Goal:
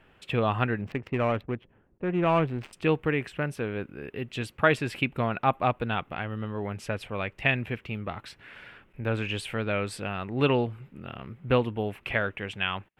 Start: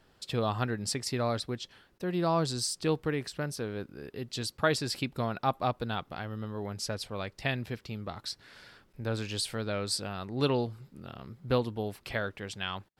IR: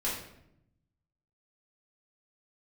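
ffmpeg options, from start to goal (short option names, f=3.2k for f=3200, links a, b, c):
-filter_complex "[0:a]asettb=1/sr,asplit=3[a][b][c];[a]atrim=end=0.814[d];[b]atrim=start=0.81:end=2.73,asetpts=PTS-STARTPTS,afade=t=in:d=0.004:c=qsin,afade=t=out:st=1.916:d=0.004:c=qsin,adynamicsmooth=sensitivity=4:basefreq=540[e];[c]atrim=start=2.726[f];[d][e]acrossfade=d=0.004:c1=hsin:c2=qsin[g];[g][f]acrossfade=d=0.004:c1=qsin:c2=hsin,highshelf=f=3.5k:t=q:w=3:g=-10,volume=4dB"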